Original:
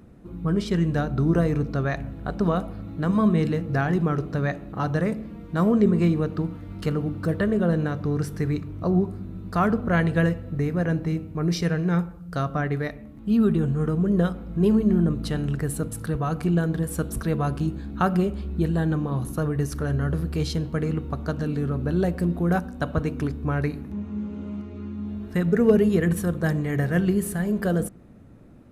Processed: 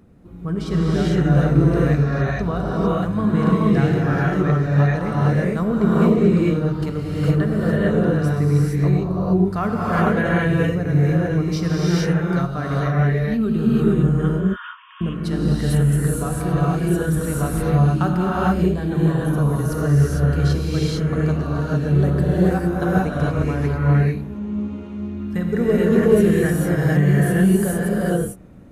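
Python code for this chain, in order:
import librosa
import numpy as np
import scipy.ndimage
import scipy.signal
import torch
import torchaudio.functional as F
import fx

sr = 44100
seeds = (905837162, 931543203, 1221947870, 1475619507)

y = fx.brickwall_bandpass(x, sr, low_hz=920.0, high_hz=3600.0, at=(14.09, 15.01))
y = fx.rev_gated(y, sr, seeds[0], gate_ms=480, shape='rising', drr_db=-7.0)
y = y * 10.0 ** (-2.5 / 20.0)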